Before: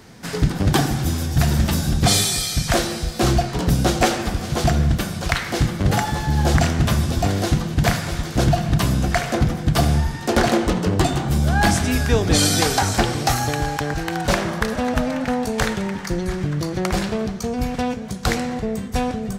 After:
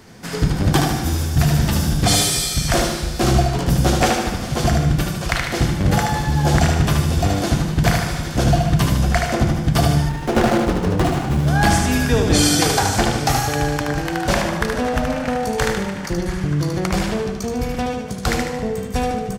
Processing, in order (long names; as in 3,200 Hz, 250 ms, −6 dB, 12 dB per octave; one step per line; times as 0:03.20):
notch filter 3,900 Hz, Q 24
on a send: repeating echo 75 ms, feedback 48%, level −4.5 dB
0:10.09–0:11.48: on the sum: windowed peak hold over 9 samples